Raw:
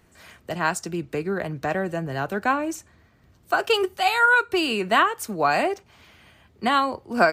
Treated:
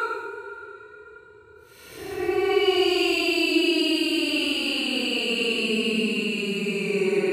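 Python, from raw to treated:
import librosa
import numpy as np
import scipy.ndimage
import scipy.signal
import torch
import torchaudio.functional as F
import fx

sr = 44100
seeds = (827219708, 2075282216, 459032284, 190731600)

y = fx.hum_notches(x, sr, base_hz=60, count=7)
y = fx.paulstretch(y, sr, seeds[0], factor=18.0, window_s=0.05, from_s=4.41)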